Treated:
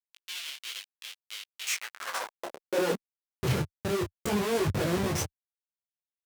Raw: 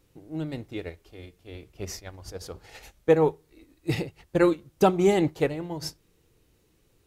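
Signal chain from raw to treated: dynamic bell 7.7 kHz, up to +6 dB, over -60 dBFS, Q 4; Schmitt trigger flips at -37 dBFS; tape speed +13%; high-pass sweep 3 kHz -> 88 Hz, 1.60–3.43 s; detune thickener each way 22 cents; trim +3 dB

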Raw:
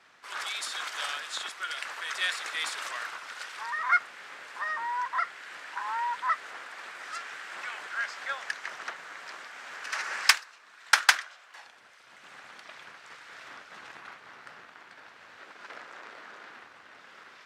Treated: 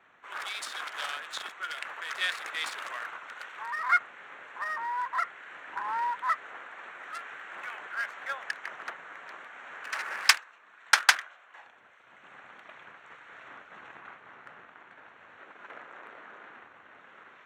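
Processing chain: local Wiener filter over 9 samples; 5.67–6.11 s: bass shelf 340 Hz +11.5 dB

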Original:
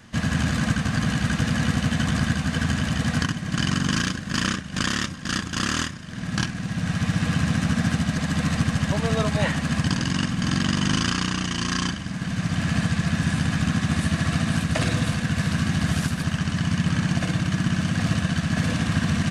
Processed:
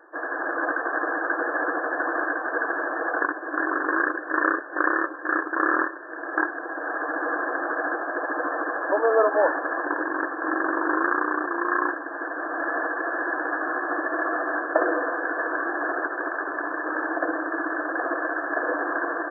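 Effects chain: tilt EQ -1.5 dB/octave; level rider gain up to 7 dB; brick-wall FIR band-pass 300–1800 Hz; trim +3 dB

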